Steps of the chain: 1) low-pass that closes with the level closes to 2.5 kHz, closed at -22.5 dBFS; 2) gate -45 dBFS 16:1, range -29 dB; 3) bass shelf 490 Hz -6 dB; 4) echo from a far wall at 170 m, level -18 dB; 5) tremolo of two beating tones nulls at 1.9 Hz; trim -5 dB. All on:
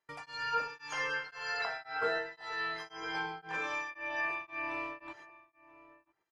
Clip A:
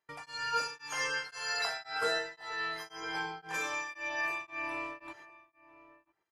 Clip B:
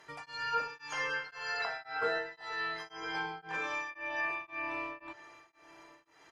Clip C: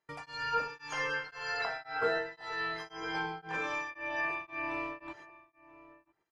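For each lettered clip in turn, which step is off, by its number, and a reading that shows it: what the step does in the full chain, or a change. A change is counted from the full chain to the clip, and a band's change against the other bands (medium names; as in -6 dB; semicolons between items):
1, 8 kHz band +10.5 dB; 2, momentary loudness spread change +3 LU; 3, 125 Hz band +4.5 dB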